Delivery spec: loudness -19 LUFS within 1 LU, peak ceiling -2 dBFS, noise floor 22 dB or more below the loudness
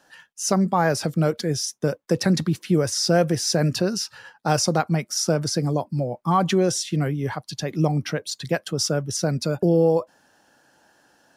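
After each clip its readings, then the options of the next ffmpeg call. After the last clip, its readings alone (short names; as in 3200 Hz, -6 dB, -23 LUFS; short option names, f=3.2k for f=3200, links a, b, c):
loudness -23.0 LUFS; peak -6.5 dBFS; loudness target -19.0 LUFS
-> -af "volume=4dB"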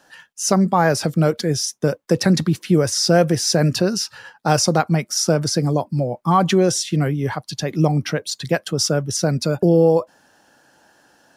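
loudness -19.0 LUFS; peak -2.5 dBFS; noise floor -59 dBFS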